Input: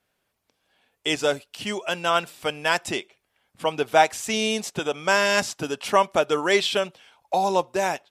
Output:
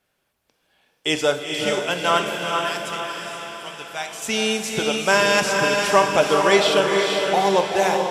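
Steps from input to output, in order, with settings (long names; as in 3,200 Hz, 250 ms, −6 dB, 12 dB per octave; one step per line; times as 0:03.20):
0:02.37–0:04.22: guitar amp tone stack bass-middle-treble 5-5-5
feedback delay with all-pass diffusion 458 ms, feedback 53%, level −3 dB
on a send at −7.5 dB: convolution reverb, pre-delay 3 ms
on the sum: level +2 dB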